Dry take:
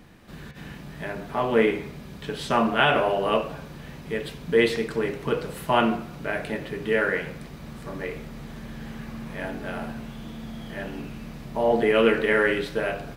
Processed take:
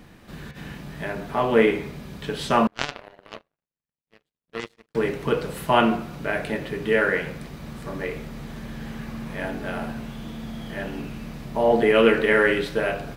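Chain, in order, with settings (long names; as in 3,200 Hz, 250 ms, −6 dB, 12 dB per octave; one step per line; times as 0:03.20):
0:02.67–0:04.95: power curve on the samples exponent 3
level +2.5 dB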